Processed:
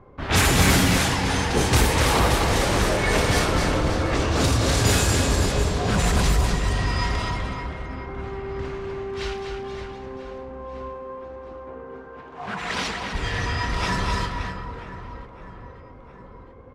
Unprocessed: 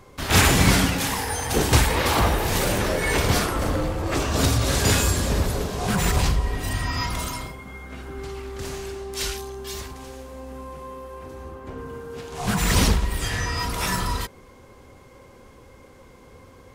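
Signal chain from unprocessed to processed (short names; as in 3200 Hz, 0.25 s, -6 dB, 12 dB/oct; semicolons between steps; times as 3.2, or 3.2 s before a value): soft clip -10.5 dBFS, distortion -20 dB; 10.64–13.13 HPF 320 Hz -> 920 Hz 6 dB/oct; reverse bouncing-ball echo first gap 0.25 s, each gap 1.3×, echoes 5; low-pass opened by the level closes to 1200 Hz, open at -14 dBFS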